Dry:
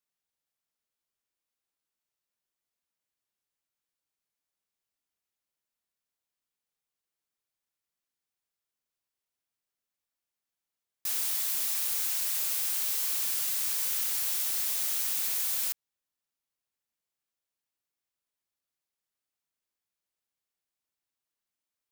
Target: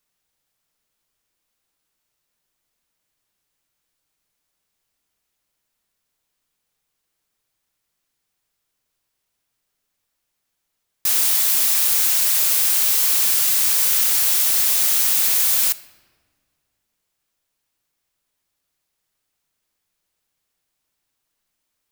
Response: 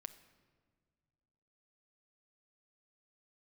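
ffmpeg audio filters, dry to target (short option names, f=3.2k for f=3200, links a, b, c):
-filter_complex "[0:a]asplit=2[a][b];[1:a]atrim=start_sample=2205,lowshelf=f=110:g=9[c];[b][c]afir=irnorm=-1:irlink=0,volume=10dB[d];[a][d]amix=inputs=2:normalize=0,volume=4dB"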